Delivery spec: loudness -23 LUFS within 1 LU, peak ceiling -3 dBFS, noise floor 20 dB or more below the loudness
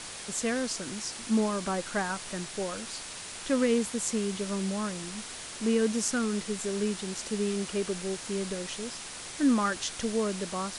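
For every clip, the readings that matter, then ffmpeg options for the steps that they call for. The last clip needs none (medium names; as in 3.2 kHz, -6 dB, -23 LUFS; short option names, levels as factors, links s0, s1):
noise floor -42 dBFS; noise floor target -51 dBFS; loudness -31.0 LUFS; peak level -11.5 dBFS; loudness target -23.0 LUFS
-> -af "afftdn=nr=9:nf=-42"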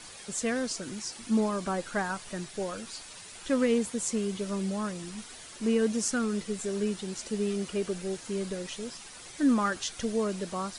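noise floor -47 dBFS; noise floor target -51 dBFS
-> -af "afftdn=nr=6:nf=-47"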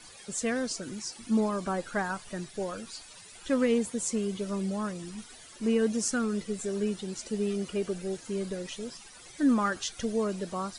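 noise floor -50 dBFS; noise floor target -51 dBFS
-> -af "afftdn=nr=6:nf=-50"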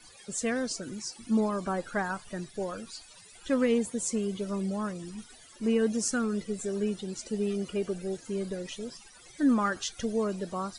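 noise floor -53 dBFS; loudness -31.0 LUFS; peak level -12.5 dBFS; loudness target -23.0 LUFS
-> -af "volume=2.51"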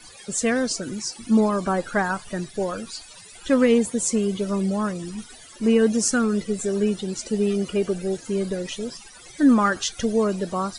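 loudness -23.0 LUFS; peak level -4.5 dBFS; noise floor -46 dBFS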